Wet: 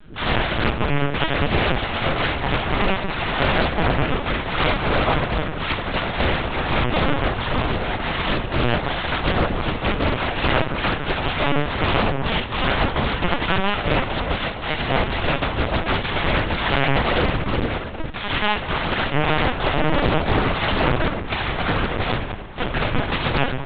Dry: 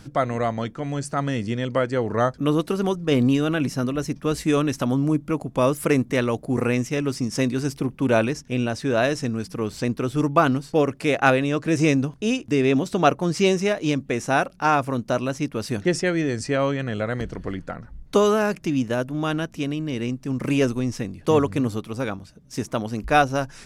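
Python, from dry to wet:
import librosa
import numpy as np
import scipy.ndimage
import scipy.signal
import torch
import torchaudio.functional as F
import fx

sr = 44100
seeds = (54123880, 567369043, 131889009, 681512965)

p1 = fx.crossing_spikes(x, sr, level_db=-19.5, at=(10.89, 12.7))
p2 = fx.rider(p1, sr, range_db=4, speed_s=2.0)
p3 = (np.mod(10.0 ** (19.5 / 20.0) * p2 + 1.0, 2.0) - 1.0) / 10.0 ** (19.5 / 20.0)
p4 = p3 + fx.echo_stepped(p3, sr, ms=238, hz=760.0, octaves=0.7, feedback_pct=70, wet_db=-7.5, dry=0)
p5 = fx.dmg_buzz(p4, sr, base_hz=100.0, harmonics=5, level_db=-56.0, tilt_db=-4, odd_only=False)
p6 = fx.room_shoebox(p5, sr, seeds[0], volume_m3=410.0, walls='mixed', distance_m=5.7)
p7 = fx.cheby_harmonics(p6, sr, harmonics=(3, 4, 5, 6), levels_db=(-10, -30, -15, -7), full_scale_db=4.5)
p8 = fx.lpc_vocoder(p7, sr, seeds[1], excitation='pitch_kept', order=10)
p9 = fx.doppler_dist(p8, sr, depth_ms=0.28)
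y = p9 * 10.0 ** (-13.0 / 20.0)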